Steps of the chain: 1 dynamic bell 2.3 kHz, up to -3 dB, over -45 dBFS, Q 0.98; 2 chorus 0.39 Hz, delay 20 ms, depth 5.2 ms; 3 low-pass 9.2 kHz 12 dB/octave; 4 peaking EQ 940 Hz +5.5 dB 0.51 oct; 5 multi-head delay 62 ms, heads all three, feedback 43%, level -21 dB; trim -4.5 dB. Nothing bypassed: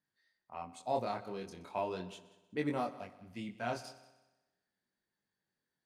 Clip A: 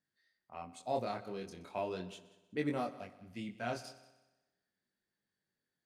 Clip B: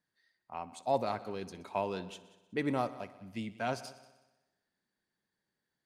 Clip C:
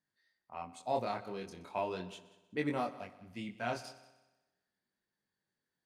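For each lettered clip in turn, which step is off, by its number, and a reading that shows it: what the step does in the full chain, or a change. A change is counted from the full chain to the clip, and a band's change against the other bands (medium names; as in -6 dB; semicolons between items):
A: 4, 1 kHz band -2.5 dB; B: 2, loudness change +3.0 LU; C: 1, 2 kHz band +2.0 dB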